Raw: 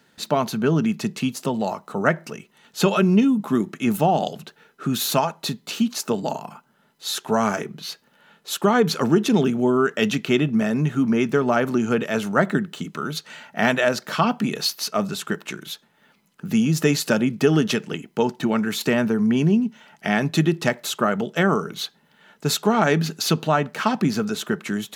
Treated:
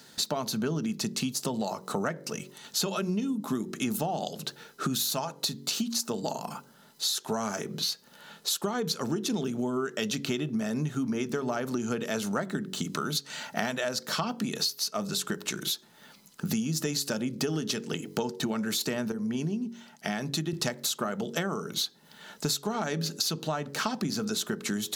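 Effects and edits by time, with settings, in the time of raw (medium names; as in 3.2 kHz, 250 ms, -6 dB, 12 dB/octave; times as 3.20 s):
19.12–20.53 s: gain -9 dB
whole clip: resonant high shelf 3.4 kHz +7 dB, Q 1.5; de-hum 46.68 Hz, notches 12; compression 8:1, threshold -32 dBFS; trim +4.5 dB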